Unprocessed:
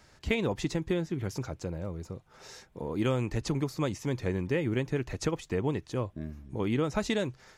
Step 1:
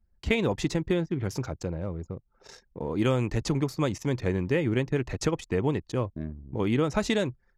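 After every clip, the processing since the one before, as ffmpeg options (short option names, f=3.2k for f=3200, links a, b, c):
-af "anlmdn=0.0251,volume=3.5dB"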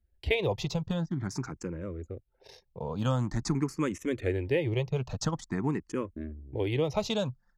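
-filter_complex "[0:a]asplit=2[a][b];[b]afreqshift=0.47[c];[a][c]amix=inputs=2:normalize=1"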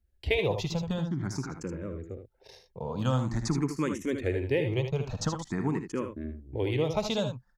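-af "aecho=1:1:59|77:0.188|0.398"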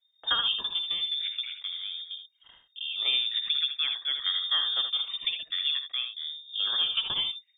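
-af "lowpass=f=3.1k:t=q:w=0.5098,lowpass=f=3.1k:t=q:w=0.6013,lowpass=f=3.1k:t=q:w=0.9,lowpass=f=3.1k:t=q:w=2.563,afreqshift=-3700"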